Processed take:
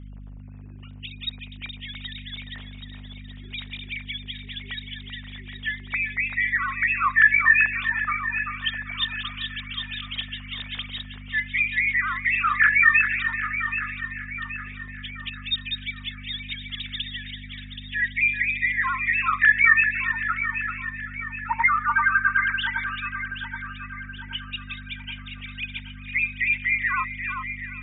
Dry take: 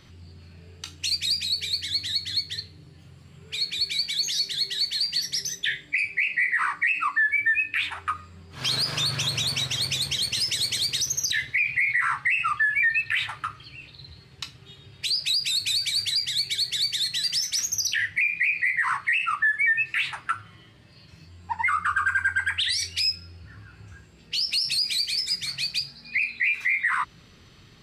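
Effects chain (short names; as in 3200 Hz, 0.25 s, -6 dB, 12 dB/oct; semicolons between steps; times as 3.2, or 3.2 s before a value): sine-wave speech; hum 50 Hz, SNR 13 dB; echo with dull and thin repeats by turns 0.388 s, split 1800 Hz, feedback 69%, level -6 dB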